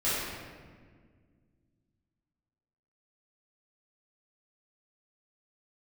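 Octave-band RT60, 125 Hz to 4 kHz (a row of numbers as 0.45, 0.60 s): 3.0, 2.8, 1.9, 1.5, 1.5, 1.0 s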